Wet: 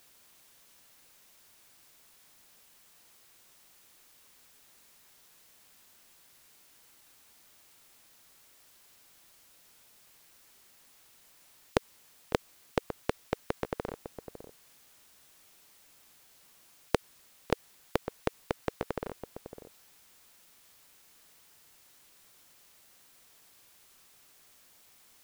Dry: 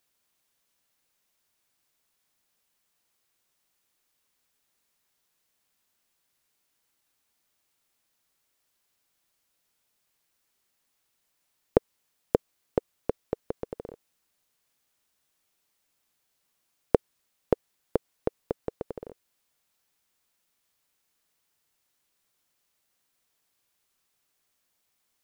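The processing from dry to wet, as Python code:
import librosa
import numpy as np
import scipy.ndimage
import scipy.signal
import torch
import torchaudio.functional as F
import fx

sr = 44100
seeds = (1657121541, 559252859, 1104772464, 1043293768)

p1 = x + fx.echo_single(x, sr, ms=554, db=-20.5, dry=0)
p2 = fx.spectral_comp(p1, sr, ratio=2.0)
y = p2 * 10.0 ** (-5.0 / 20.0)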